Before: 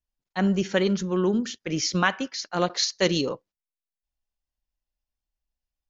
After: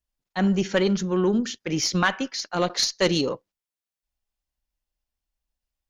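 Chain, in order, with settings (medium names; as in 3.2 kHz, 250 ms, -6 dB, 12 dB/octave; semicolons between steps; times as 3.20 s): single-diode clipper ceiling -11.5 dBFS; trim +2.5 dB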